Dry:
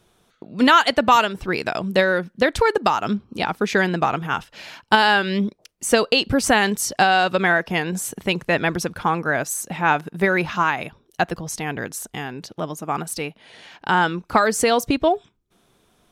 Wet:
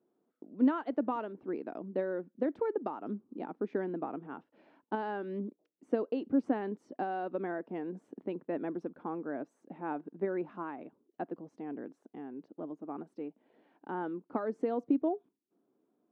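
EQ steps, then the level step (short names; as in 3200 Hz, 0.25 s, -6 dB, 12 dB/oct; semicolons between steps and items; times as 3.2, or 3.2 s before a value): ladder band-pass 320 Hz, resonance 55%; tilt +1.5 dB/oct; 0.0 dB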